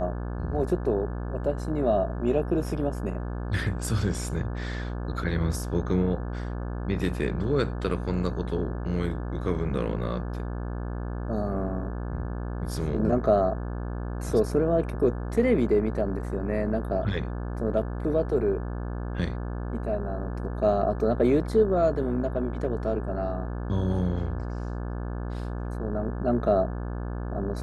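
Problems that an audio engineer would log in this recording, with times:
buzz 60 Hz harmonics 29 -32 dBFS

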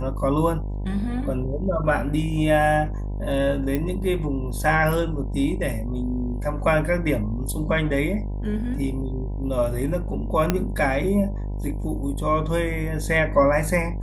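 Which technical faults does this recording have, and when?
buzz 50 Hz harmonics 20 -28 dBFS
3.75 pop -13 dBFS
10.5 pop -6 dBFS

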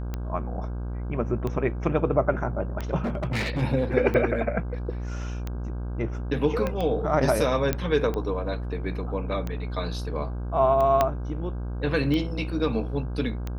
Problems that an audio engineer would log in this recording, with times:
buzz 60 Hz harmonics 27 -31 dBFS
tick 45 rpm -18 dBFS
3.04–3.63 clipped -23.5 dBFS
6.67 pop -15 dBFS
7.73 pop -10 dBFS
11.01 pop -8 dBFS

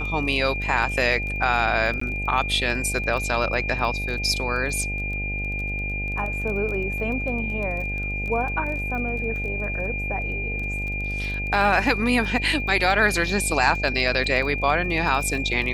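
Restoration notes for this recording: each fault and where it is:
buzz 50 Hz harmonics 17 -30 dBFS
crackle 19/s -30 dBFS
tone 2400 Hz -28 dBFS
2–2.01 gap 14 ms

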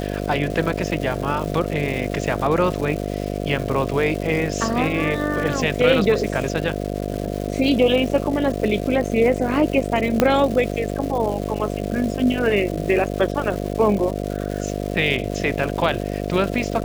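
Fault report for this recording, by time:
buzz 50 Hz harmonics 14 -26 dBFS
crackle 430/s -28 dBFS
10.2 pop -2 dBFS

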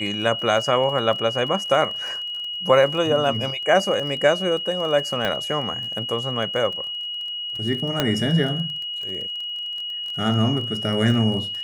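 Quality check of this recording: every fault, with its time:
crackle 24/s -30 dBFS
tone 2900 Hz -27 dBFS
5.25 pop -10 dBFS
8 pop -5 dBFS

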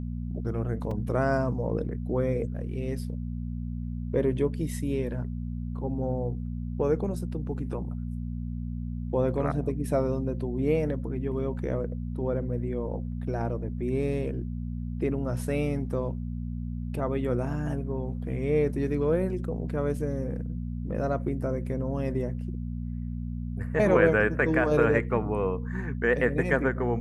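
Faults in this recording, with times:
hum 60 Hz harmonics 4 -33 dBFS
0.91 gap 3.5 ms

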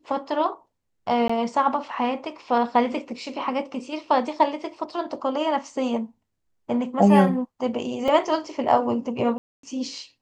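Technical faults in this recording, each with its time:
1.28–1.29 gap 15 ms
8.08 gap 3.1 ms
9.38–9.63 gap 0.253 s

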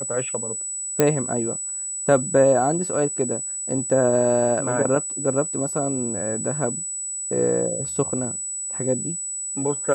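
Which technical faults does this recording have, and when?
tone 7900 Hz -27 dBFS
1 pop -2 dBFS

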